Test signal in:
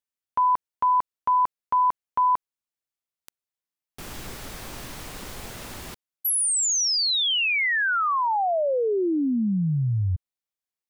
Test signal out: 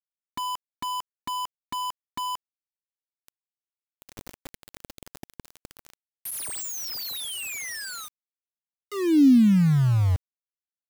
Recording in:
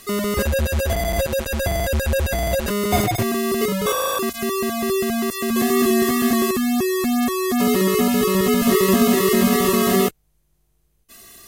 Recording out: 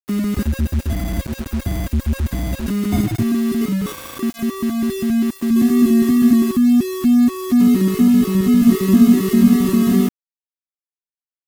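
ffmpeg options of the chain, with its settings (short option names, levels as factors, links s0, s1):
-af "lowshelf=f=370:t=q:w=3:g=9.5,aeval=exprs='val(0)*gte(abs(val(0)),0.0891)':c=same,volume=0.422"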